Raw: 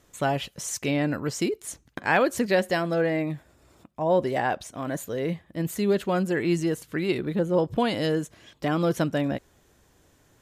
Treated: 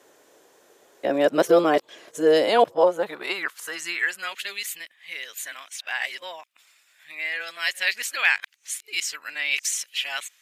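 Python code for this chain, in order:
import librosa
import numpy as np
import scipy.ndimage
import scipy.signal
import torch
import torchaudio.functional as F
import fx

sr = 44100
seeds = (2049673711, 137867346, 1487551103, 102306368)

y = x[::-1].copy()
y = fx.filter_sweep_highpass(y, sr, from_hz=450.0, to_hz=2300.0, start_s=2.36, end_s=4.4, q=1.8)
y = F.gain(torch.from_numpy(y), 5.0).numpy()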